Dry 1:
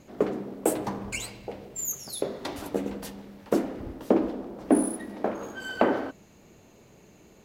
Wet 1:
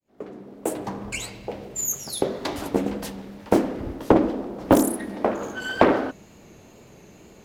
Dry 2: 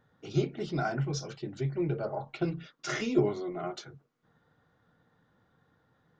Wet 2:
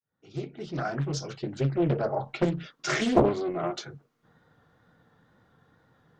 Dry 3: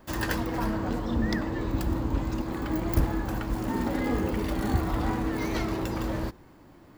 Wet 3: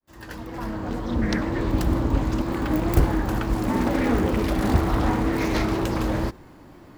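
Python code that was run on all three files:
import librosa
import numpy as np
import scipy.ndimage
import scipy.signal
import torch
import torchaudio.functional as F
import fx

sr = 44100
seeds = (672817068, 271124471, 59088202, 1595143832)

y = fx.fade_in_head(x, sr, length_s=1.69)
y = fx.vibrato(y, sr, rate_hz=2.1, depth_cents=40.0)
y = fx.doppler_dist(y, sr, depth_ms=0.84)
y = y * librosa.db_to_amplitude(6.0)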